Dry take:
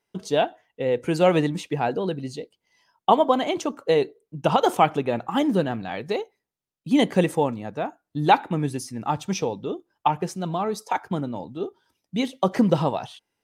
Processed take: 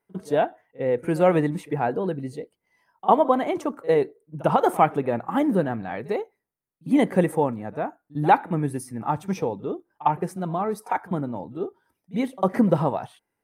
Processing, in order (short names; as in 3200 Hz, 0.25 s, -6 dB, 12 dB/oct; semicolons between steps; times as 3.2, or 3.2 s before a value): band shelf 4400 Hz -11.5 dB; pre-echo 52 ms -20.5 dB